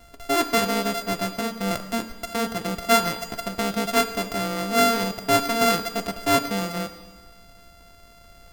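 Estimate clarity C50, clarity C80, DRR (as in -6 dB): 10.5 dB, 12.0 dB, 8.5 dB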